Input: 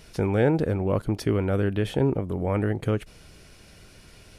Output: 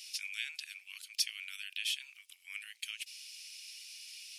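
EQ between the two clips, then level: elliptic high-pass 2500 Hz, stop band 80 dB; bell 5200 Hz +4.5 dB 0.29 oct; +6.0 dB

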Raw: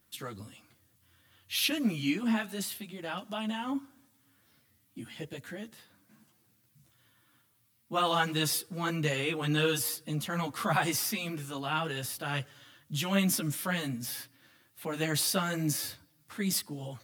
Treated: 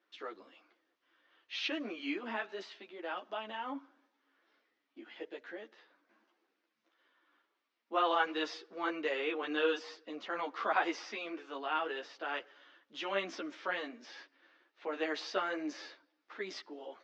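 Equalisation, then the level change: elliptic band-pass 350–6300 Hz, stop band 40 dB; air absorption 180 m; high shelf 4600 Hz -8 dB; 0.0 dB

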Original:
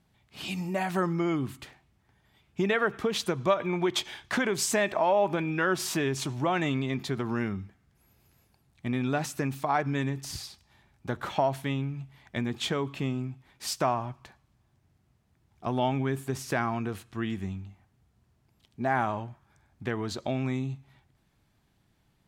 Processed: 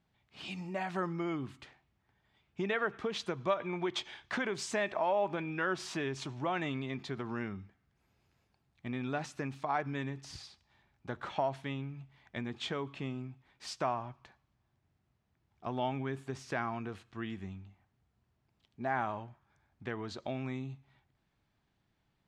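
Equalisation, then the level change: air absorption 92 m; low shelf 400 Hz -4.5 dB; -5.0 dB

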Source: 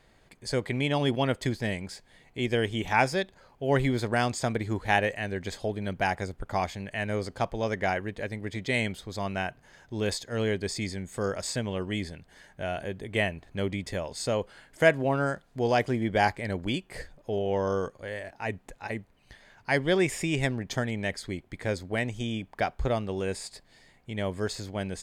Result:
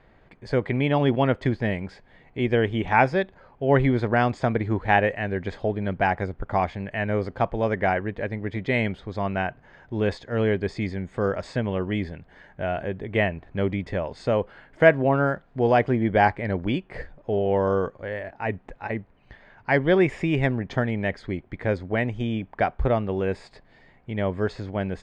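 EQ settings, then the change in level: LPF 2100 Hz 12 dB/oct; +5.5 dB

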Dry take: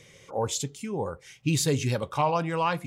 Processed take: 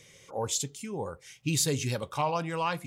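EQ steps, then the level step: high shelf 3400 Hz +7 dB; -4.5 dB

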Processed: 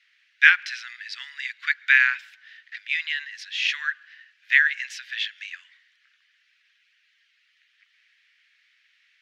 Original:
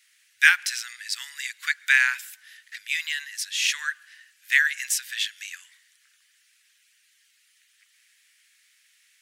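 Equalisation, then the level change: HPF 1400 Hz 12 dB/oct; air absorption 260 m; high shelf 8200 Hz -8 dB; +6.0 dB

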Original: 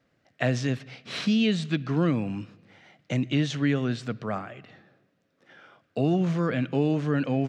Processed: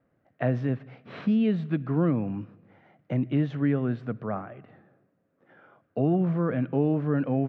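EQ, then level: LPF 1300 Hz 12 dB/oct; 0.0 dB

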